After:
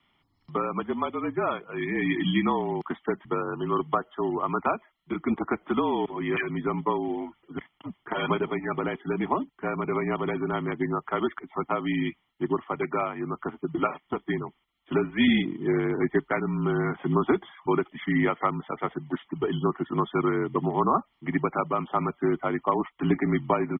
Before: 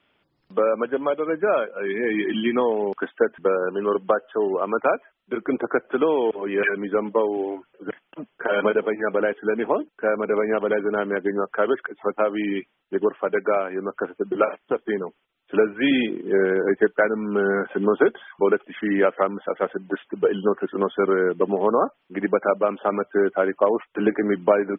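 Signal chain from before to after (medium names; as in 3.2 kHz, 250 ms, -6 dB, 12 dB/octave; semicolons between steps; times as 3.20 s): frequency shift -43 Hz; comb 1 ms, depth 74%; speed mistake 24 fps film run at 25 fps; trim -3.5 dB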